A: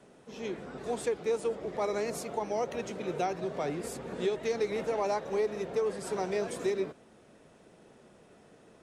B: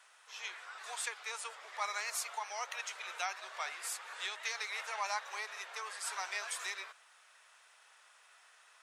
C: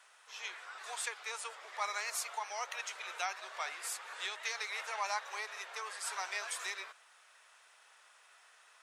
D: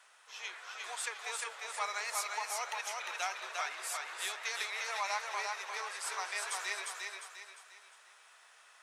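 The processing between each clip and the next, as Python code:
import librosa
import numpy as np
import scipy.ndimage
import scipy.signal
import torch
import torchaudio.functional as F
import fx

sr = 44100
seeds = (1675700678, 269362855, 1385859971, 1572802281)

y1 = scipy.signal.sosfilt(scipy.signal.butter(4, 1100.0, 'highpass', fs=sr, output='sos'), x)
y1 = y1 * 10.0 ** (4.5 / 20.0)
y2 = fx.low_shelf(y1, sr, hz=330.0, db=6.0)
y3 = fx.echo_thinned(y2, sr, ms=352, feedback_pct=40, hz=210.0, wet_db=-3)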